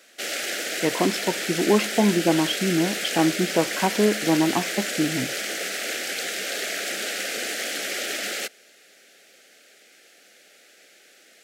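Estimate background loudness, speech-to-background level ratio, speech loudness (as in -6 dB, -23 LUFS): -27.0 LUFS, 3.5 dB, -23.5 LUFS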